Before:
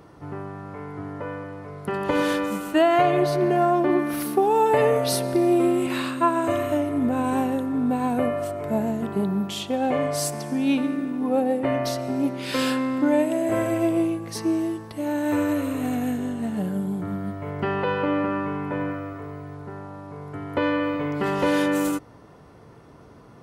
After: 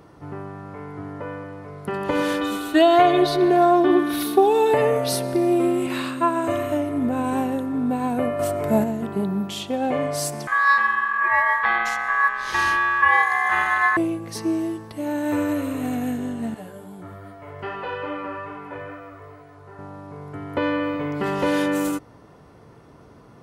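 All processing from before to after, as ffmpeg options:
-filter_complex "[0:a]asettb=1/sr,asplit=3[a][b][c];[a]atrim=end=2.414[d];[b]atrim=start=2.41:end=4.74,asetpts=PTS-STARTPTS,afade=t=in:d=0.004:c=qsin,afade=t=out:st=2.326:d=0.004:c=qsin,equalizer=f=3.7k:t=o:w=0.38:g=13.5,aecho=1:1:2.7:0.73,atrim=end_sample=102753[e];[c]atrim=start=4.736[f];[d][e]acrossfade=d=0.004:c1=hsin:c2=qsin[g];[g][f]acrossfade=d=0.004:c1=qsin:c2=hsin,asettb=1/sr,asplit=3[h][i][j];[h]atrim=end=8.394[k];[i]atrim=start=8.39:end=8.84,asetpts=PTS-STARTPTS,afade=t=in:d=0.004:c=qsin,afade=t=out:st=0.446:d=0.004:c=qsin,highshelf=f=6.2k:g=5.5,acontrast=34[l];[j]atrim=start=8.836[m];[k][l]acrossfade=d=0.004:c1=hsin:c2=qsin[n];[n][m]acrossfade=d=0.004:c1=qsin:c2=hsin,asettb=1/sr,asplit=3[o][p][q];[o]atrim=end=10.474[r];[p]atrim=start=10.47:end=13.97,asetpts=PTS-STARTPTS,afade=t=in:d=0.004:c=qsin,afade=t=out:st=3.496:d=0.004:c=qsin,lowpass=11k,lowshelf=f=380:g=11,aeval=exprs='val(0)*sin(2*PI*1400*n/s)':c=same[s];[q]atrim=start=13.966[t];[r][s]acrossfade=d=0.004:c1=hsin:c2=qsin[u];[u][t]acrossfade=d=0.004:c1=qsin:c2=hsin,asettb=1/sr,asplit=3[v][w][x];[v]atrim=end=16.544[y];[w]atrim=start=16.54:end=19.79,asetpts=PTS-STARTPTS,afade=t=in:d=0.004:c=qsin,afade=t=out:st=3.246:d=0.004:c=qsin,equalizer=f=210:t=o:w=1.4:g=-12,flanger=delay=16:depth=2.7:speed=2.4[z];[x]atrim=start=19.786[aa];[y][z]acrossfade=d=0.004:c1=hsin:c2=qsin[ab];[ab][aa]acrossfade=d=0.004:c1=qsin:c2=hsin"

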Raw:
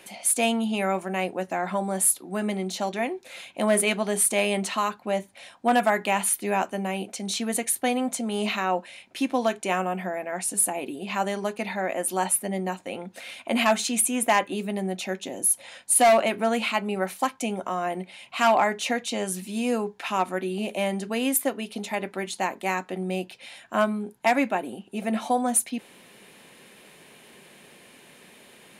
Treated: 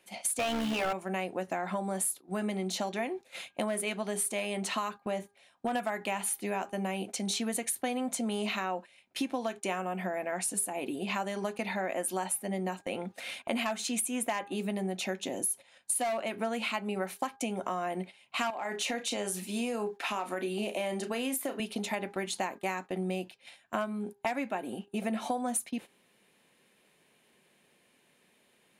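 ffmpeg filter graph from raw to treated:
-filter_complex "[0:a]asettb=1/sr,asplit=3[a][b][c];[a]atrim=end=0.394[d];[b]atrim=start=0.39:end=0.93,asetpts=PTS-STARTPTS,afade=t=in:d=0.004:c=qsin,afade=t=out:st=0.536:d=0.004:c=qsin,tremolo=f=70:d=0.667,acrusher=bits=4:mode=log:mix=0:aa=0.000001,asplit=2[e][f];[f]highpass=f=720:p=1,volume=28dB,asoftclip=type=tanh:threshold=-11dB[g];[e][g]amix=inputs=2:normalize=0,lowpass=f=2.7k:p=1,volume=-6dB[h];[c]atrim=start=0.926[i];[d][h]acrossfade=d=0.004:c1=hsin:c2=qsin[j];[j][i]acrossfade=d=0.004:c1=qsin:c2=hsin,asettb=1/sr,asplit=3[k][l][m];[k]atrim=end=5.034[n];[l]atrim=start=5.03:end=5.75,asetpts=PTS-STARTPTS,afade=t=in:d=0.004:c=qsin,afade=t=out:st=0.716:d=0.004:c=qsin,acompressor=threshold=-27dB:ratio=1.5:attack=3.2:release=140:knee=1:detection=peak,asoftclip=type=hard:threshold=-18dB[o];[m]atrim=start=5.746[p];[n][o]acrossfade=d=0.004:c1=hsin:c2=qsin[q];[q][p]acrossfade=d=0.004:c1=qsin:c2=hsin,asettb=1/sr,asplit=3[r][s][t];[r]atrim=end=18.504[u];[s]atrim=start=18.5:end=21.6,asetpts=PTS-STARTPTS,afade=t=in:d=0.004:c=qsin,afade=t=out:st=3.096:d=0.004:c=qsin,highpass=220,acompressor=threshold=-26dB:ratio=4:attack=3.2:release=140:knee=1:detection=peak,asplit=2[v][w];[w]adelay=34,volume=-10dB[x];[v][x]amix=inputs=2:normalize=0,atrim=end_sample=136710[y];[t]atrim=start=21.596[z];[u][y]acrossfade=d=0.004:c1=hsin:c2=qsin[aa];[aa][z]acrossfade=d=0.004:c1=qsin:c2=hsin,acompressor=threshold=-29dB:ratio=8,agate=range=-16dB:threshold=-41dB:ratio=16:detection=peak,bandreject=f=403.9:t=h:w=4,bandreject=f=807.8:t=h:w=4,bandreject=f=1.2117k:t=h:w=4,bandreject=f=1.6156k:t=h:w=4"

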